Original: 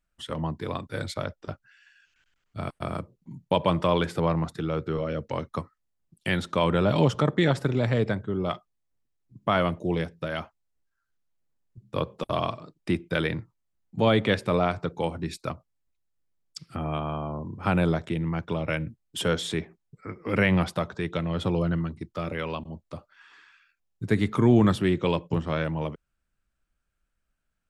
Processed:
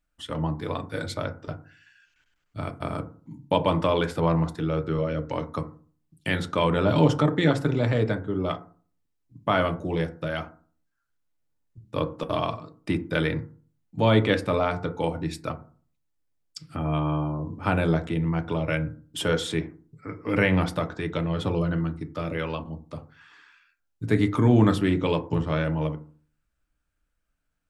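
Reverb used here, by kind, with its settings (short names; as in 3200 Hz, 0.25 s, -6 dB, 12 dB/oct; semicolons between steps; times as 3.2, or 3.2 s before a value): FDN reverb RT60 0.42 s, low-frequency decay 1.25×, high-frequency decay 0.35×, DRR 6.5 dB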